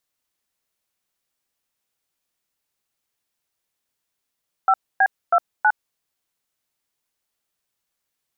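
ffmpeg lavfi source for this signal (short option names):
-f lavfi -i "aevalsrc='0.178*clip(min(mod(t,0.322),0.059-mod(t,0.322))/0.002,0,1)*(eq(floor(t/0.322),0)*(sin(2*PI*770*mod(t,0.322))+sin(2*PI*1336*mod(t,0.322)))+eq(floor(t/0.322),1)*(sin(2*PI*770*mod(t,0.322))+sin(2*PI*1633*mod(t,0.322)))+eq(floor(t/0.322),2)*(sin(2*PI*697*mod(t,0.322))+sin(2*PI*1336*mod(t,0.322)))+eq(floor(t/0.322),3)*(sin(2*PI*852*mod(t,0.322))+sin(2*PI*1477*mod(t,0.322))))':d=1.288:s=44100"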